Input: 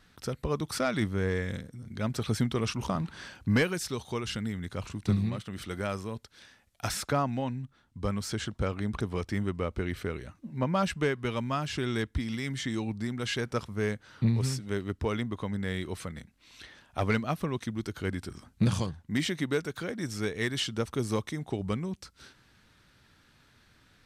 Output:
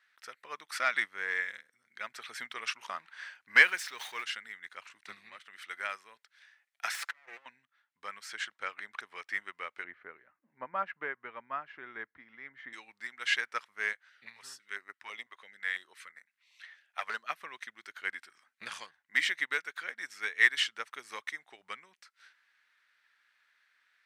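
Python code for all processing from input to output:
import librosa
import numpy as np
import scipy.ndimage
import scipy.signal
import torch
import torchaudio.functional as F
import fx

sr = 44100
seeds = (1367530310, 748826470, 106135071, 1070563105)

y = fx.chain(x, sr, fx.zero_step(step_db=-40.5),
    fx.dynamic_eq(hz=9100.0, q=0.82, threshold_db=-46.0, ratio=4.0, max_db=-4),
    fx.sustainer(db_per_s=62.0), at=(3.64, 4.24))
y = fx.chain(y, sr, fx.lower_of_two(delay_ms=5.9),
    fx.over_compress(threshold_db=-38.0, ratio=-0.5), at=(6.94, 7.46))
y = fx.chain(y, sr, fx.lowpass(hz=1200.0, slope=12),
    fx.low_shelf(hz=350.0, db=8.5), at=(9.84, 12.73))
y = fx.chain(y, sr, fx.low_shelf(hz=220.0, db=-5.5),
    fx.filter_held_notch(hz=6.0, low_hz=230.0, high_hz=3200.0), at=(13.93, 17.3))
y = scipy.signal.sosfilt(scipy.signal.butter(2, 880.0, 'highpass', fs=sr, output='sos'), y)
y = fx.peak_eq(y, sr, hz=1900.0, db=14.0, octaves=1.2)
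y = fx.upward_expand(y, sr, threshold_db=-46.0, expansion=1.5)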